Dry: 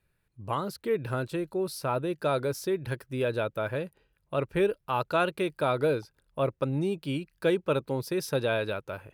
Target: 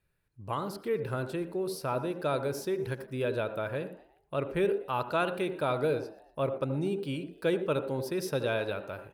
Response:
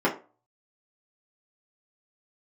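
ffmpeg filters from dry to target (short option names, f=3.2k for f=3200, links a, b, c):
-filter_complex "[0:a]asplit=4[a][b][c][d];[b]adelay=119,afreqshift=85,volume=-22dB[e];[c]adelay=238,afreqshift=170,volume=-28dB[f];[d]adelay=357,afreqshift=255,volume=-34dB[g];[a][e][f][g]amix=inputs=4:normalize=0,asplit=2[h][i];[1:a]atrim=start_sample=2205,adelay=73[j];[i][j]afir=irnorm=-1:irlink=0,volume=-26dB[k];[h][k]amix=inputs=2:normalize=0,volume=-3dB"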